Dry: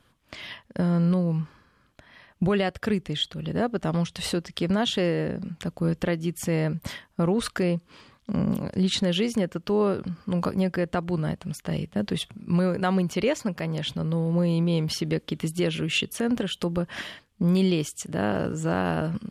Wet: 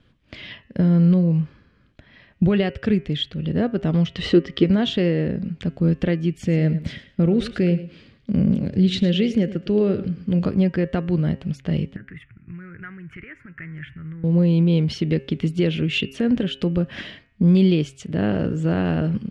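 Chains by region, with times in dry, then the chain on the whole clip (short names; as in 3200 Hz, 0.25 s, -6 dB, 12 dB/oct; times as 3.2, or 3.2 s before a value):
4.06–4.64 LPF 7600 Hz 24 dB/oct + small resonant body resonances 350/1200/1900/3000 Hz, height 10 dB, ringing for 20 ms
6.34–10.45 bell 1000 Hz -8 dB 0.65 oct + feedback echo 0.108 s, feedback 18%, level -14.5 dB
11.96–14.24 compressor 16:1, threshold -31 dBFS + gate -39 dBFS, range -7 dB + EQ curve 130 Hz 0 dB, 220 Hz -15 dB, 320 Hz -7 dB, 530 Hz -20 dB, 930 Hz -11 dB, 1400 Hz +9 dB, 2000 Hz +10 dB, 4100 Hz -28 dB, 6000 Hz -20 dB, 10000 Hz -7 dB
whole clip: LPF 2900 Hz 12 dB/oct; bell 1000 Hz -13 dB 1.6 oct; de-hum 134.6 Hz, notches 22; gain +7.5 dB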